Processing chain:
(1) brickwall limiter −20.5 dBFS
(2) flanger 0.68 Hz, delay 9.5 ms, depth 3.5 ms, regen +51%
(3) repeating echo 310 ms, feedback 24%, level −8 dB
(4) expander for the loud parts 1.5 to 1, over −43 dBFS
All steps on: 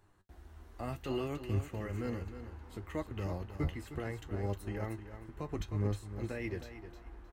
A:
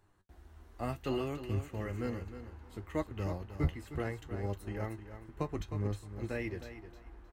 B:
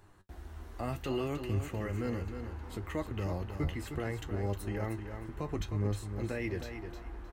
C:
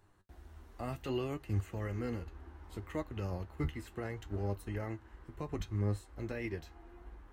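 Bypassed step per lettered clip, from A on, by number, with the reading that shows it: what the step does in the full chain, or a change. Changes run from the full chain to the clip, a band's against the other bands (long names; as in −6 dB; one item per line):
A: 1, change in crest factor +2.0 dB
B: 4, 8 kHz band +2.5 dB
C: 3, change in momentary loudness spread +5 LU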